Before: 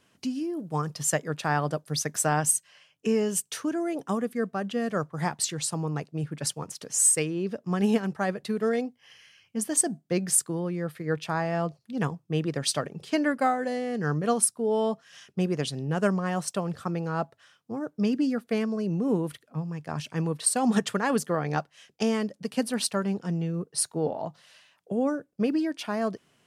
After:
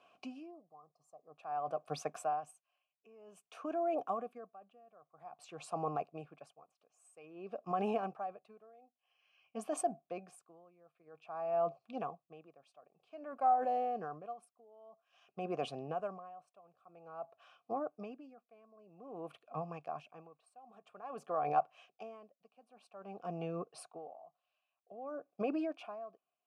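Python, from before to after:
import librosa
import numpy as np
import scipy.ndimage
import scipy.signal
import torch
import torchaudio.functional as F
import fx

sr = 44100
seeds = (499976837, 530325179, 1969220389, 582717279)

p1 = fx.vowel_filter(x, sr, vowel='a')
p2 = fx.spec_box(p1, sr, start_s=0.52, length_s=0.85, low_hz=1300.0, high_hz=4000.0, gain_db=-18)
p3 = fx.over_compress(p2, sr, threshold_db=-46.0, ratio=-1.0)
p4 = p2 + (p3 * librosa.db_to_amplitude(-2.0))
p5 = fx.dynamic_eq(p4, sr, hz=4200.0, q=0.74, threshold_db=-59.0, ratio=4.0, max_db=-8)
p6 = p5 * 10.0 ** (-28 * (0.5 - 0.5 * np.cos(2.0 * np.pi * 0.51 * np.arange(len(p5)) / sr)) / 20.0)
y = p6 * librosa.db_to_amplitude(4.5)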